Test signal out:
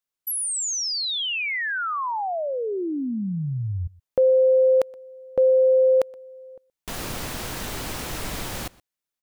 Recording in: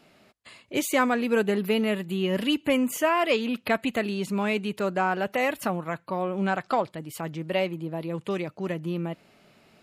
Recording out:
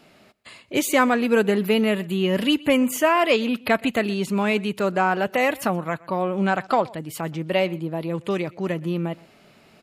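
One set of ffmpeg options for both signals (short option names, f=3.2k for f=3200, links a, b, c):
-filter_complex "[0:a]asplit=2[a][b];[b]adelay=122.4,volume=-23dB,highshelf=f=4k:g=-2.76[c];[a][c]amix=inputs=2:normalize=0,volume=4.5dB"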